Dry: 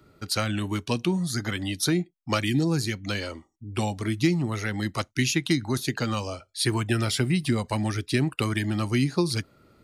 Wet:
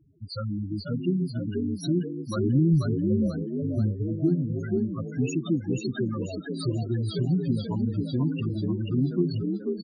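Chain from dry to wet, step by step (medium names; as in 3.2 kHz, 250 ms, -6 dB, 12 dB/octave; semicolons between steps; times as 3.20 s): 2.39–4.06 s: square wave that keeps the level; loudest bins only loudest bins 4; frequency-shifting echo 487 ms, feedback 44%, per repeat +53 Hz, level -4.5 dB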